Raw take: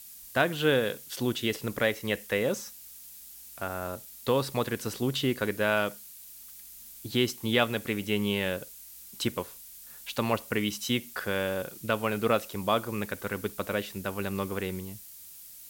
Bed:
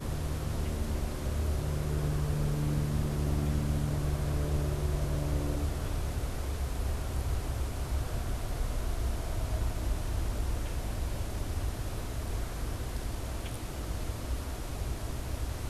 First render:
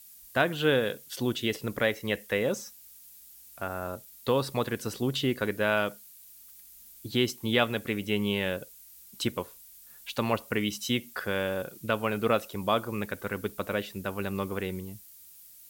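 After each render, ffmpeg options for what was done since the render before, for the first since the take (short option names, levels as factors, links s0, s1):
-af "afftdn=nr=6:nf=-48"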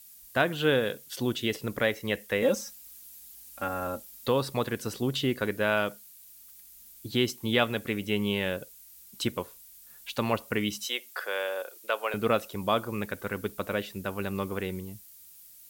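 -filter_complex "[0:a]asettb=1/sr,asplit=3[s0][s1][s2];[s0]atrim=end=2.424[s3];[s1]atrim=start=2.42:end=4.28,asetpts=PTS-STARTPTS,afade=t=in:d=0.004:c=qsin,afade=t=out:st=1.856:d=0.004:c=qsin,aecho=1:1:3.7:0.95,atrim=end_sample=82026[s4];[s2]atrim=start=4.276[s5];[s3][s4]acrossfade=d=0.004:c1=hsin:c2=qsin[s6];[s6][s5]acrossfade=d=0.004:c1=qsin:c2=hsin,asettb=1/sr,asplit=3[s7][s8][s9];[s7]atrim=end=10.864[s10];[s8]atrim=start=10.86:end=12.14,asetpts=PTS-STARTPTS,afade=t=in:d=0.004:c=qsin,afade=t=out:st=1.276:d=0.004:c=qsin,highpass=f=460:w=0.5412,highpass=f=460:w=1.3066[s11];[s9]atrim=start=12.136[s12];[s10][s11]acrossfade=d=0.004:c1=hsin:c2=qsin[s13];[s13][s12]acrossfade=d=0.004:c1=qsin:c2=hsin"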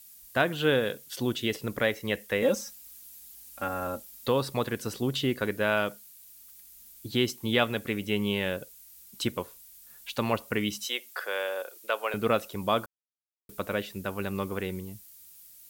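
-filter_complex "[0:a]asplit=3[s0][s1][s2];[s0]atrim=end=12.86,asetpts=PTS-STARTPTS,afade=t=out:st=12.856:d=0.004:c=hsin[s3];[s1]atrim=start=12.86:end=13.49,asetpts=PTS-STARTPTS,volume=0[s4];[s2]atrim=start=13.49,asetpts=PTS-STARTPTS,afade=t=in:d=0.004:c=hsin[s5];[s3][s4][s5]concat=n=3:v=0:a=1"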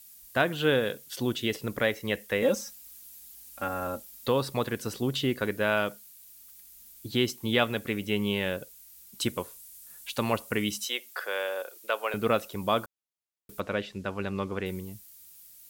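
-filter_complex "[0:a]asettb=1/sr,asplit=3[s0][s1][s2];[s0]atrim=end=9.204[s3];[s1]atrim=start=9.2:end=10.85,asetpts=PTS-STARTPTS,afade=t=in:d=0.004:c=qsin,afade=t=out:st=1.646:d=0.004:c=qsin,equalizer=f=9500:t=o:w=1.1:g=5.5[s4];[s2]atrim=start=10.846[s5];[s3][s4]acrossfade=d=0.004:c1=hsin:c2=qsin[s6];[s6][s5]acrossfade=d=0.004:c1=qsin:c2=hsin,asettb=1/sr,asplit=3[s7][s8][s9];[s7]atrim=end=13.604[s10];[s8]atrim=start=13.6:end=14.66,asetpts=PTS-STARTPTS,afade=t=in:d=0.004:c=qsin,afade=t=out:st=1.056:d=0.004:c=qsin,lowpass=5800[s11];[s9]atrim=start=14.656[s12];[s10][s11]acrossfade=d=0.004:c1=hsin:c2=qsin[s13];[s13][s12]acrossfade=d=0.004:c1=qsin:c2=hsin"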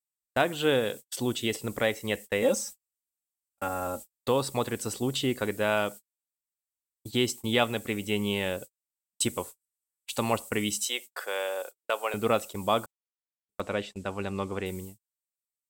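-af "equalizer=f=160:t=o:w=0.33:g=-6,equalizer=f=800:t=o:w=0.33:g=4,equalizer=f=1600:t=o:w=0.33:g=-4,equalizer=f=8000:t=o:w=0.33:g=12,agate=range=0.00562:threshold=0.0112:ratio=16:detection=peak"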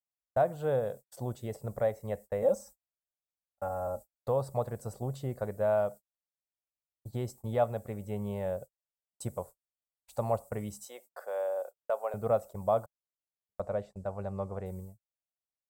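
-af "firequalizer=gain_entry='entry(150,0);entry(280,-16);entry(610,3);entry(930,-7);entry(2900,-29);entry(4600,-19);entry(14000,-13)':delay=0.05:min_phase=1"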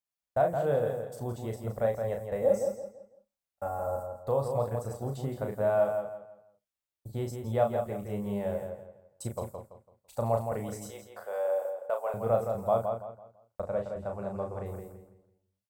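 -filter_complex "[0:a]asplit=2[s0][s1];[s1]adelay=35,volume=0.562[s2];[s0][s2]amix=inputs=2:normalize=0,asplit=2[s3][s4];[s4]adelay=167,lowpass=f=4200:p=1,volume=0.501,asplit=2[s5][s6];[s6]adelay=167,lowpass=f=4200:p=1,volume=0.32,asplit=2[s7][s8];[s8]adelay=167,lowpass=f=4200:p=1,volume=0.32,asplit=2[s9][s10];[s10]adelay=167,lowpass=f=4200:p=1,volume=0.32[s11];[s5][s7][s9][s11]amix=inputs=4:normalize=0[s12];[s3][s12]amix=inputs=2:normalize=0"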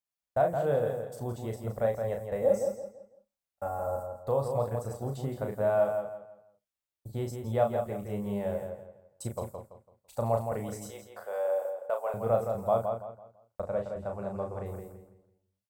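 -af anull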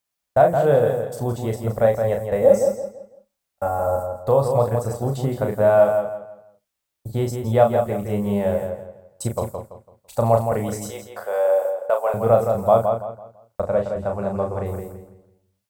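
-af "volume=3.55,alimiter=limit=0.708:level=0:latency=1"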